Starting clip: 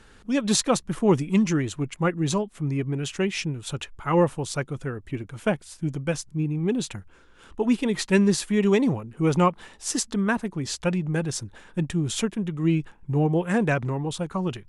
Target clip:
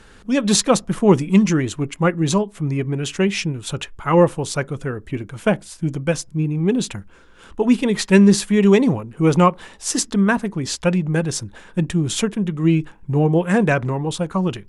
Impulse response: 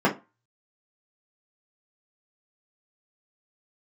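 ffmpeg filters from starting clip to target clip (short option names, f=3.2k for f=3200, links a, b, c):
-filter_complex "[0:a]asplit=2[a][b];[1:a]atrim=start_sample=2205[c];[b][c]afir=irnorm=-1:irlink=0,volume=-35dB[d];[a][d]amix=inputs=2:normalize=0,volume=5.5dB"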